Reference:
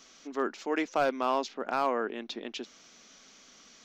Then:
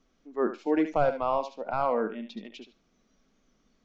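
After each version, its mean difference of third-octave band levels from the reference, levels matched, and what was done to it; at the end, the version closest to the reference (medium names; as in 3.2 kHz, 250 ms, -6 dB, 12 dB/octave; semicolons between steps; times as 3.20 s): 8.5 dB: spectral noise reduction 14 dB; tilt EQ -4.5 dB/octave; thinning echo 73 ms, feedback 17%, high-pass 600 Hz, level -8 dB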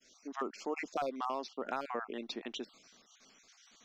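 4.0 dB: random holes in the spectrogram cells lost 34%; expander -54 dBFS; compression, threshold -30 dBFS, peak gain reduction 7.5 dB; trim -2 dB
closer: second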